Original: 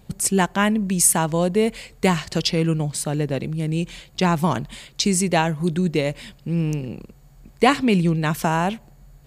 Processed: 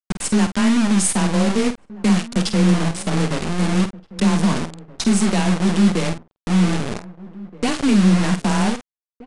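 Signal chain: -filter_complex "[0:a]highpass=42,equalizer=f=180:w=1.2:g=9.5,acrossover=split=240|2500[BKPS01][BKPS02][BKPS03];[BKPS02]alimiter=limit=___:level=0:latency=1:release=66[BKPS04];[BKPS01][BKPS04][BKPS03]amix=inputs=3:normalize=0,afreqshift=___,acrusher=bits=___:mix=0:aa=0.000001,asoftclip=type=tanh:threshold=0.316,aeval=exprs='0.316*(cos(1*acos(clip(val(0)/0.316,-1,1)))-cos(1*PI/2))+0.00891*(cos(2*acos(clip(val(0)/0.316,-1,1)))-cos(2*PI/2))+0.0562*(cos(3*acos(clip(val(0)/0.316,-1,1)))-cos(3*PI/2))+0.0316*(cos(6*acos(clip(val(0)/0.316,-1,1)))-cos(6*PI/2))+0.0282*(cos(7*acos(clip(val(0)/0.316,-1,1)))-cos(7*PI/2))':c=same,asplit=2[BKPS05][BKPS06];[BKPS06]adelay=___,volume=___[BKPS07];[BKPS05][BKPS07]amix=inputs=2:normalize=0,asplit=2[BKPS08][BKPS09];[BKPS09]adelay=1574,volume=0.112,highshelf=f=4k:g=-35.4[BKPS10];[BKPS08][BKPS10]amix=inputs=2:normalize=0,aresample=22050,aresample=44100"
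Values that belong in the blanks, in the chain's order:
0.237, 19, 3, 49, 0.316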